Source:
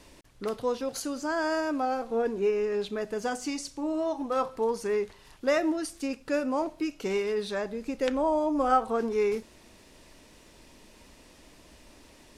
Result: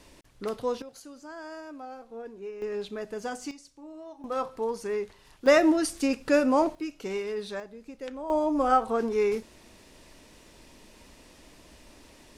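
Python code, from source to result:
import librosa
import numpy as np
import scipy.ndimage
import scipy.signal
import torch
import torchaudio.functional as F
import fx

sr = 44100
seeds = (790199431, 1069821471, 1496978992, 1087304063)

y = fx.gain(x, sr, db=fx.steps((0.0, -0.5), (0.82, -13.0), (2.62, -3.5), (3.51, -14.5), (4.24, -2.5), (5.46, 6.0), (6.75, -3.5), (7.6, -10.5), (8.3, 1.0)))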